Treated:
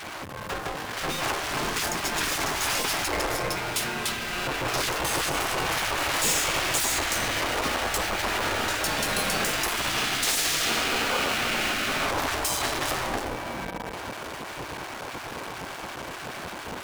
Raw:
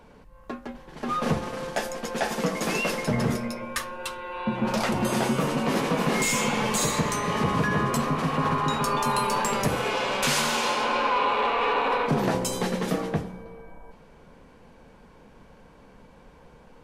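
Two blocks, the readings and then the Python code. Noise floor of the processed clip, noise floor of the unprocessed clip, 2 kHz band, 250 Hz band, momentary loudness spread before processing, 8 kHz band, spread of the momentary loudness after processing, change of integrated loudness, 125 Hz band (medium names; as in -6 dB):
-38 dBFS, -52 dBFS, +3.5 dB, -7.5 dB, 9 LU, +4.5 dB, 12 LU, -1.0 dB, -7.5 dB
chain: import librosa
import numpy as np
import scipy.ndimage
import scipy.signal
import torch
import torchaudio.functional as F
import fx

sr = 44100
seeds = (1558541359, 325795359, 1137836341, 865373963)

y = fx.power_curve(x, sr, exponent=0.35)
y = fx.spec_gate(y, sr, threshold_db=-10, keep='weak')
y = y * 10.0 ** (-4.5 / 20.0)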